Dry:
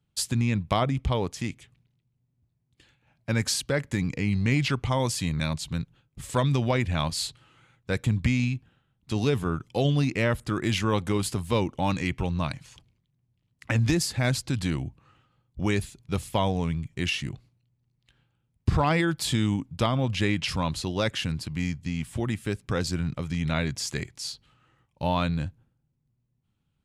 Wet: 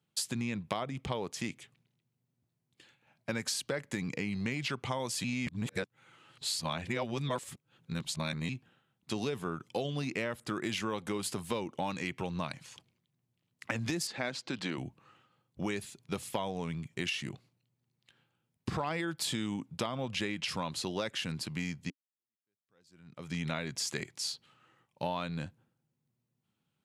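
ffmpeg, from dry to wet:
-filter_complex "[0:a]asettb=1/sr,asplit=3[a][b][c];[a]atrim=end=14.074[d];[b]atrim=start=14.07:end=14.78,asetpts=PTS-STARTPTS,afade=t=in:d=0.004:c=qsin,afade=t=out:st=0.706:d=0.004:c=qsin,highpass=220,lowpass=4.7k[e];[c]atrim=start=14.776[f];[d][e]acrossfade=d=0.004:c1=hsin:c2=qsin[g];[g][f]acrossfade=d=0.004:c1=qsin:c2=hsin,asplit=4[h][i][j][k];[h]atrim=end=5.242[l];[i]atrim=start=5.238:end=8.492,asetpts=PTS-STARTPTS,areverse[m];[j]atrim=start=8.488:end=21.9,asetpts=PTS-STARTPTS,afade=t=out:st=13.408:d=0.004:c=hsin[n];[k]atrim=start=21.9,asetpts=PTS-STARTPTS,afade=t=in:d=1.45:c=exp[o];[l][m]acrossfade=d=0.004:c1=hsin:c2=hsin[p];[n][o]concat=n=2:v=0:a=1[q];[p][q]acrossfade=d=0.004:c1=hsin:c2=hsin,highpass=200,equalizer=f=280:w=7.5:g=-4.5,acompressor=threshold=-31dB:ratio=6"

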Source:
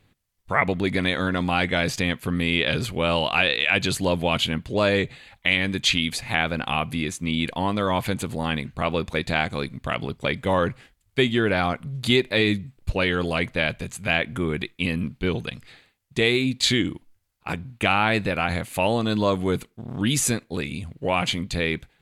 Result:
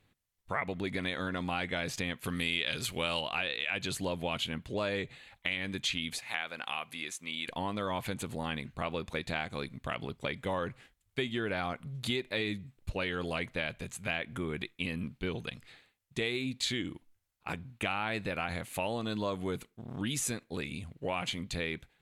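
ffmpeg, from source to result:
-filter_complex "[0:a]asettb=1/sr,asplit=3[a][b][c];[a]atrim=end=2.244[d];[b]atrim=start=2.24:end=3.21,asetpts=PTS-STARTPTS,afade=t=in:d=0.004:c=qsin,afade=t=out:st=0.966:d=0.004:c=qsin,highshelf=f=2.1k:g=11.5[e];[c]atrim=start=3.206[f];[d][e]acrossfade=d=0.004:c1=hsin:c2=qsin[g];[g][f]acrossfade=d=0.004:c1=qsin:c2=hsin,asettb=1/sr,asplit=3[h][i][j];[h]atrim=end=6.194[k];[i]atrim=start=6.19:end=7.48,asetpts=PTS-STARTPTS,afade=t=in:d=0.004:c=qsin,afade=t=out:st=1.286:d=0.004:c=qsin,highpass=f=1k:p=1[l];[j]atrim=start=7.476[m];[k][l]acrossfade=d=0.004:c1=hsin:c2=qsin[n];[n][m]acrossfade=d=0.004:c1=qsin:c2=hsin,lowshelf=f=360:g=-3,acompressor=threshold=-25dB:ratio=2.5,bandreject=f=4.7k:w=23,volume=-6.5dB"

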